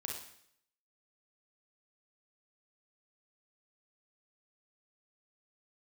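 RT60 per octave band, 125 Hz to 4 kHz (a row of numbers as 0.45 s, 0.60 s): 0.70 s, 0.70 s, 0.70 s, 0.65 s, 0.70 s, 0.70 s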